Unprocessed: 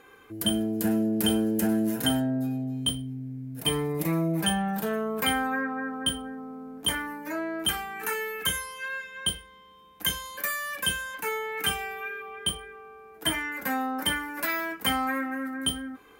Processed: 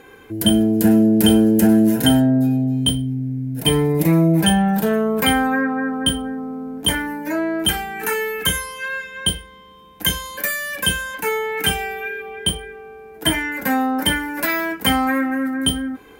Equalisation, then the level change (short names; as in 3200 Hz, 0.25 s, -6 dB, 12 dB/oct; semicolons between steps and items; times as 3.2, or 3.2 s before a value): low shelf 490 Hz +5.5 dB; notch 1200 Hz, Q 6.3; +7.5 dB